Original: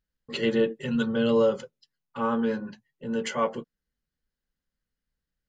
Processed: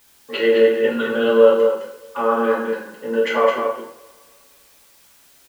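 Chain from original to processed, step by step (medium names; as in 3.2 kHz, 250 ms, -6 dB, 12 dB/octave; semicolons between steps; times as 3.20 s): three-band isolator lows -23 dB, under 340 Hz, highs -22 dB, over 2.8 kHz; in parallel at +2.5 dB: compression, threshold -32 dBFS, peak gain reduction 12 dB; on the sum: word length cut 10-bit, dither triangular; delay 212 ms -5.5 dB; two-slope reverb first 0.55 s, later 2.4 s, from -25 dB, DRR -2 dB; trim +2.5 dB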